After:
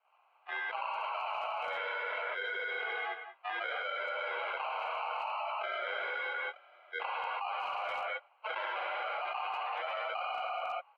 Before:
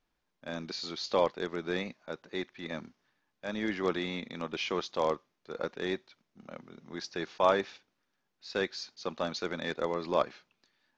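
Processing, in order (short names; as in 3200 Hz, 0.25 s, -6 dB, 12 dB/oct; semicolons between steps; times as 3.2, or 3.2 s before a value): per-bin expansion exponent 3; high shelf 2300 Hz +9.5 dB; harmonic-percussive split harmonic -12 dB; dynamic EQ 1400 Hz, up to +5 dB, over -49 dBFS, Q 1; limiter -28 dBFS, peak gain reduction 15 dB; sample-and-hold 26×; non-linear reverb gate 0.4 s flat, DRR -3.5 dB; mistuned SSB +130 Hz 580–2900 Hz; speakerphone echo 0.19 s, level -13 dB; fast leveller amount 100%; gain -4.5 dB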